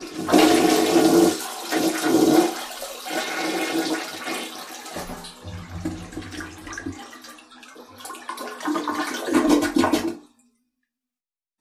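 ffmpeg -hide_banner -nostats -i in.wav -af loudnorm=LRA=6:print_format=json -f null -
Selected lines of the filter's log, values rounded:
"input_i" : "-21.6",
"input_tp" : "-2.9",
"input_lra" : "11.5",
"input_thresh" : "-33.3",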